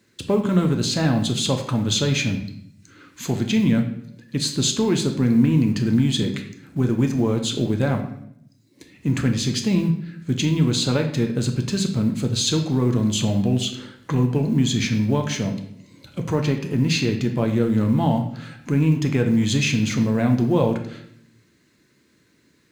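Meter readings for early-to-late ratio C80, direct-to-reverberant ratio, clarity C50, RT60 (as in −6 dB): 11.0 dB, 4.0 dB, 8.5 dB, 0.70 s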